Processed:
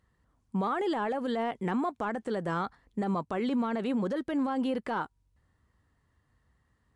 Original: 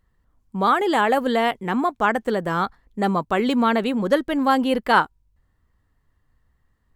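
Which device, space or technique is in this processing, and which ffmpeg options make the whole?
podcast mastering chain: -af "highpass=65,deesser=0.95,acompressor=threshold=0.0501:ratio=3,alimiter=limit=0.075:level=0:latency=1:release=37" -ar 24000 -c:a libmp3lame -b:a 112k

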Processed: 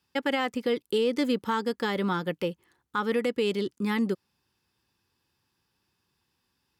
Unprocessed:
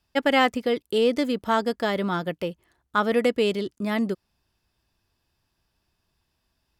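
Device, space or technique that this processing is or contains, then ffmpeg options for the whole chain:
PA system with an anti-feedback notch: -af "highpass=110,asuperstop=centerf=650:order=4:qfactor=4.2,alimiter=limit=0.141:level=0:latency=1:release=219"

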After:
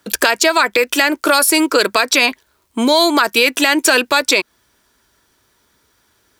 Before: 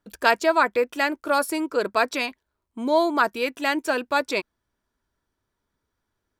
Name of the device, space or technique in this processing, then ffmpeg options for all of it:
mastering chain: -filter_complex "[0:a]highpass=42,equalizer=f=400:t=o:w=1.4:g=3.5,acrossover=split=150|1700[s0][s1][s2];[s0]acompressor=threshold=0.00141:ratio=4[s3];[s1]acompressor=threshold=0.0562:ratio=4[s4];[s2]acompressor=threshold=0.0282:ratio=4[s5];[s3][s4][s5]amix=inputs=3:normalize=0,acompressor=threshold=0.0501:ratio=2.5,tiltshelf=f=1400:g=-6.5,asoftclip=type=hard:threshold=0.141,alimiter=level_in=11.2:limit=0.891:release=50:level=0:latency=1,volume=0.891"

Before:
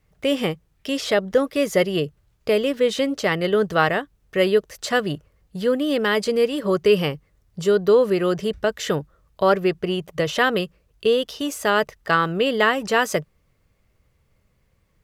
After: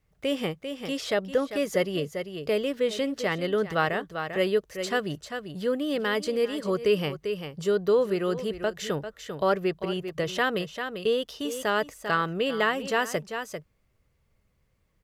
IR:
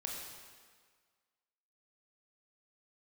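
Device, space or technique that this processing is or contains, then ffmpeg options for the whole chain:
ducked delay: -filter_complex "[0:a]asplit=3[s0][s1][s2];[s1]adelay=395,volume=0.422[s3];[s2]apad=whole_len=680664[s4];[s3][s4]sidechaincompress=threshold=0.0398:ratio=4:attack=26:release=196[s5];[s0][s5]amix=inputs=2:normalize=0,volume=0.473"

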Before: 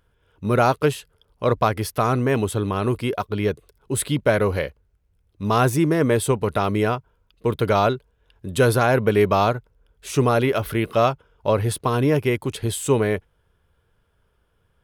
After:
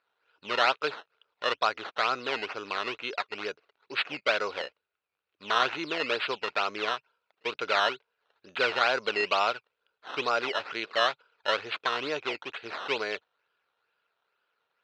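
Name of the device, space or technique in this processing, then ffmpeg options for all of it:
circuit-bent sampling toy: -af "acrusher=samples=13:mix=1:aa=0.000001:lfo=1:lforange=13:lforate=2.2,highpass=580,equalizer=f=1400:t=q:w=4:g=7,equalizer=f=2600:t=q:w=4:g=9,equalizer=f=4000:t=q:w=4:g=5,lowpass=f=4600:w=0.5412,lowpass=f=4600:w=1.3066,volume=0.447"

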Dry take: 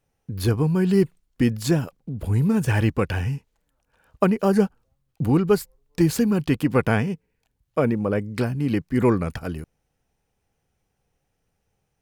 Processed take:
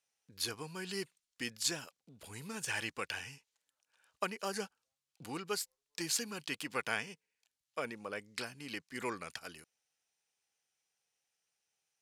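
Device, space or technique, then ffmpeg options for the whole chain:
piezo pickup straight into a mixer: -af "lowpass=6500,aderivative,volume=1.58"

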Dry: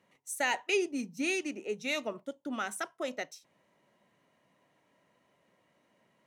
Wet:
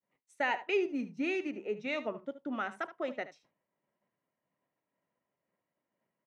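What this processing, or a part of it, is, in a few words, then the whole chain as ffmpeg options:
hearing-loss simulation: -af "lowpass=2300,aecho=1:1:74:0.188,agate=range=0.0224:threshold=0.001:ratio=3:detection=peak"

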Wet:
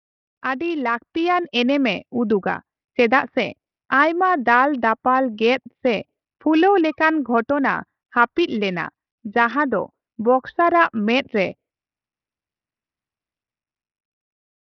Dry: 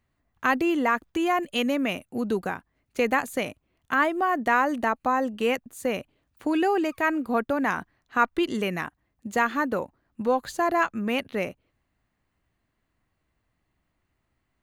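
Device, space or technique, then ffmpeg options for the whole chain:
Bluetooth headset: -af "afftdn=nr=27:nf=-44,highpass=f=100:p=1,dynaudnorm=f=110:g=21:m=4.73,aresample=8000,aresample=44100,volume=0.891" -ar 44100 -c:a sbc -b:a 64k

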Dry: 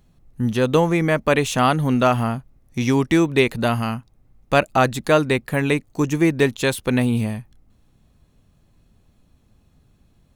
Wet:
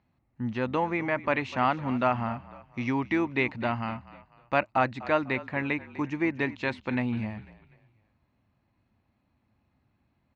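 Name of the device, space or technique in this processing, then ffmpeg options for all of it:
frequency-shifting delay pedal into a guitar cabinet: -filter_complex "[0:a]asplit=4[s0][s1][s2][s3];[s1]adelay=248,afreqshift=-38,volume=0.141[s4];[s2]adelay=496,afreqshift=-76,volume=0.0582[s5];[s3]adelay=744,afreqshift=-114,volume=0.0237[s6];[s0][s4][s5][s6]amix=inputs=4:normalize=0,highpass=100,equalizer=f=160:t=q:w=4:g=-9,equalizer=f=440:t=q:w=4:g=-9,equalizer=f=910:t=q:w=4:g=5,equalizer=f=2100:t=q:w=4:g=5,equalizer=f=3400:t=q:w=4:g=-9,lowpass=f=4000:w=0.5412,lowpass=f=4000:w=1.3066,volume=0.398"

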